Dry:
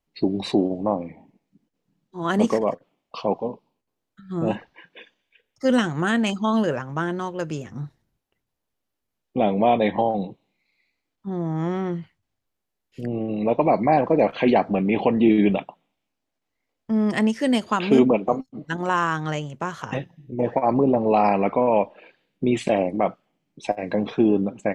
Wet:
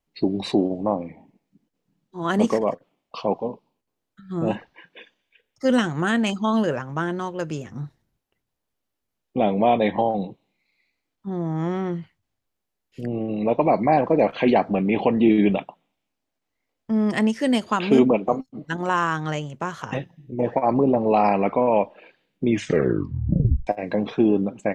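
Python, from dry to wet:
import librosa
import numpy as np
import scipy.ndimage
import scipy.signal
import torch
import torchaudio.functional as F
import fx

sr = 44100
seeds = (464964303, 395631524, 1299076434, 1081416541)

y = fx.edit(x, sr, fx.tape_stop(start_s=22.44, length_s=1.23), tone=tone)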